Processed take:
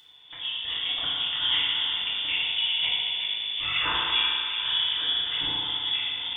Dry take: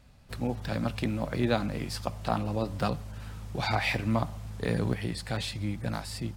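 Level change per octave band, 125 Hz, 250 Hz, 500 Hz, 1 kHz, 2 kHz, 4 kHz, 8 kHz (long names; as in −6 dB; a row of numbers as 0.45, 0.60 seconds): −20.0 dB, −18.0 dB, −15.5 dB, −2.0 dB, +6.5 dB, +19.0 dB, below −35 dB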